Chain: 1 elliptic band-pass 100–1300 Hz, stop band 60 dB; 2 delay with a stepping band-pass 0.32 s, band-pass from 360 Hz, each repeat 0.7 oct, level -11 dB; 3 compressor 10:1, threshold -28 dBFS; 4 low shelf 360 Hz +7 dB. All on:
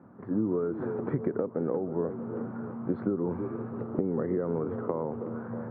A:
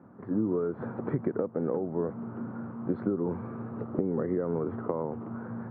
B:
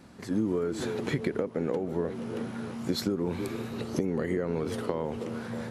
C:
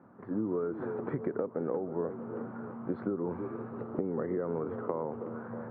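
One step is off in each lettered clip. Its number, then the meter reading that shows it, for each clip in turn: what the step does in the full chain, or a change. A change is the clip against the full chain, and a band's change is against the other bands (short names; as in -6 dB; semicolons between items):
2, momentary loudness spread change +2 LU; 1, 2 kHz band +9.0 dB; 4, 125 Hz band -4.0 dB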